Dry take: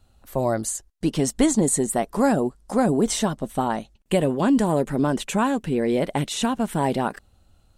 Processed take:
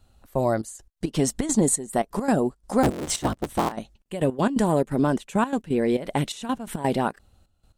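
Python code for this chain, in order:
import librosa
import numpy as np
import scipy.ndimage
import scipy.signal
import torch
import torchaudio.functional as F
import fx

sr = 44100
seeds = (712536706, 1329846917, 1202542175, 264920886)

y = fx.cycle_switch(x, sr, every=3, mode='inverted', at=(2.83, 3.72))
y = fx.step_gate(y, sr, bpm=171, pattern='xxx.xxx..x.x.', floor_db=-12.0, edge_ms=4.5)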